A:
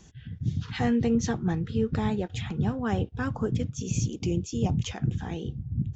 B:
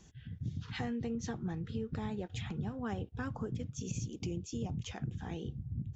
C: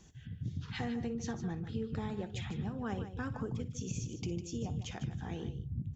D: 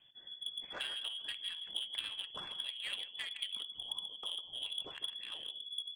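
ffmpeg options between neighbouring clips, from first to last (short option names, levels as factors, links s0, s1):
-af "acompressor=threshold=0.0398:ratio=6,volume=0.501"
-af "aecho=1:1:58|152:0.168|0.282"
-filter_complex "[0:a]lowpass=f=3000:t=q:w=0.5098,lowpass=f=3000:t=q:w=0.6013,lowpass=f=3000:t=q:w=0.9,lowpass=f=3000:t=q:w=2.563,afreqshift=-3500,asplit=2[s0][s1];[s1]adynamicsmooth=sensitivity=6.5:basefreq=510,volume=1.41[s2];[s0][s2]amix=inputs=2:normalize=0,volume=0.596"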